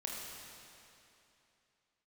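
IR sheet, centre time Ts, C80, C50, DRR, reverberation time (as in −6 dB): 142 ms, 0.5 dB, −1.0 dB, −3.0 dB, 2.9 s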